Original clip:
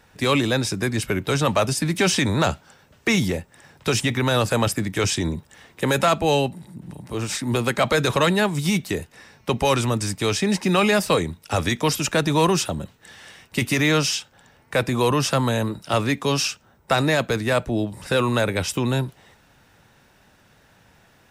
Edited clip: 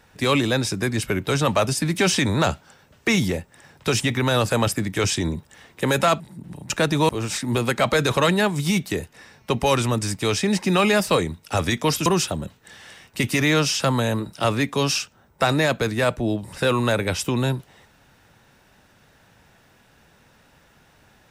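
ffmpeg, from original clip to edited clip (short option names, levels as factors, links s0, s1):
-filter_complex "[0:a]asplit=6[s0][s1][s2][s3][s4][s5];[s0]atrim=end=6.202[s6];[s1]atrim=start=6.578:end=7.082[s7];[s2]atrim=start=12.048:end=12.442[s8];[s3]atrim=start=7.078:end=12.052[s9];[s4]atrim=start=12.438:end=14.182[s10];[s5]atrim=start=15.288[s11];[s6][s7]acrossfade=d=0.004:c1=hsin:c2=hsin[s12];[s12][s8]acrossfade=d=0.004:c1=hsin:c2=hsin[s13];[s13][s9]acrossfade=d=0.004:c1=hsin:c2=hsin[s14];[s14][s10]acrossfade=d=0.004:c1=hsin:c2=hsin[s15];[s15][s11]acrossfade=d=0.004:c1=hsin:c2=hsin"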